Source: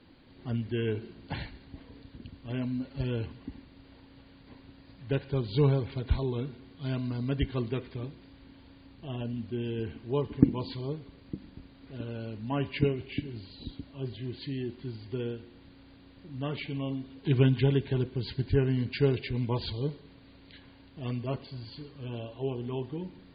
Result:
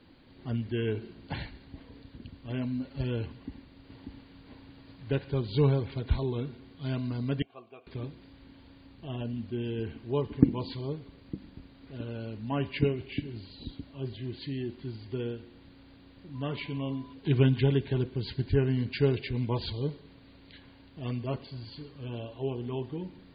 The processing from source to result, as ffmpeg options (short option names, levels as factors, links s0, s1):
-filter_complex "[0:a]asettb=1/sr,asplit=3[s0][s1][s2];[s0]atrim=end=3.314[s3];[s1]atrim=start=3.31:end=5.4,asetpts=PTS-STARTPTS,afade=t=in:d=0.004:c=qsin,afade=t=out:st=2.086:d=0.004:c=qsin,aecho=1:1:590:0.708,atrim=end_sample=92169[s4];[s2]atrim=start=5.396[s5];[s3][s4]acrossfade=d=0.004:c1=hsin:c2=qsin[s6];[s6][s5]acrossfade=d=0.004:c1=qsin:c2=hsin,asettb=1/sr,asplit=3[s7][s8][s9];[s7]atrim=end=7.424[s10];[s8]atrim=start=7.42:end=7.87,asetpts=PTS-STARTPTS,afade=t=in:d=0.004:c=qsin,afade=t=out:st=0.446:d=0.004:c=qsin,asplit=3[s11][s12][s13];[s11]bandpass=f=730:t=q:w=8,volume=1[s14];[s12]bandpass=f=1090:t=q:w=8,volume=0.501[s15];[s13]bandpass=f=2440:t=q:w=8,volume=0.355[s16];[s14][s15][s16]amix=inputs=3:normalize=0[s17];[s9]atrim=start=7.866[s18];[s10][s17]acrossfade=d=0.004:c1=hsin:c2=qsin[s19];[s19][s18]acrossfade=d=0.004:c1=qsin:c2=hsin,asettb=1/sr,asplit=3[s20][s21][s22];[s20]atrim=end=16.354[s23];[s21]atrim=start=16.35:end=17.13,asetpts=PTS-STARTPTS,afade=t=in:d=0.004:c=qsin,afade=t=out:st=0.776:d=0.004:c=qsin,aeval=exprs='val(0)+0.00224*sin(2*PI*1000*n/s)':c=same[s24];[s22]atrim=start=17.126[s25];[s23][s24]acrossfade=d=0.004:c1=hsin:c2=qsin[s26];[s26][s25]acrossfade=d=0.004:c1=qsin:c2=hsin"